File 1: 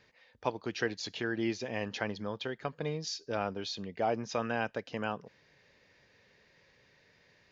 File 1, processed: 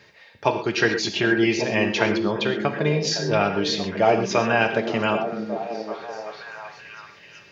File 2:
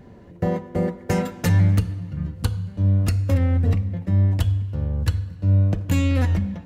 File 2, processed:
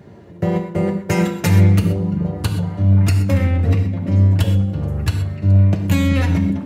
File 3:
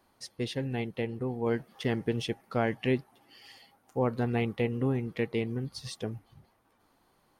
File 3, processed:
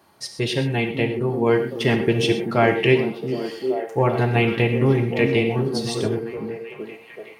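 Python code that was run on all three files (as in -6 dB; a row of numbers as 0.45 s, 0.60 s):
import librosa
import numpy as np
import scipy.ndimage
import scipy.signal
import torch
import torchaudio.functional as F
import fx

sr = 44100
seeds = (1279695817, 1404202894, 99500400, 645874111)

y = scipy.signal.sosfilt(scipy.signal.butter(2, 100.0, 'highpass', fs=sr, output='sos'), x)
y = fx.dynamic_eq(y, sr, hz=2500.0, q=2.9, threshold_db=-52.0, ratio=4.0, max_db=5)
y = fx.notch_comb(y, sr, f0_hz=250.0)
y = fx.echo_stepped(y, sr, ms=382, hz=210.0, octaves=0.7, feedback_pct=70, wet_db=-2.5)
y = fx.rev_gated(y, sr, seeds[0], gate_ms=150, shape='flat', drr_db=6.0)
y = librosa.util.normalize(y) * 10.0 ** (-3 / 20.0)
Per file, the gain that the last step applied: +13.5 dB, +5.5 dB, +12.0 dB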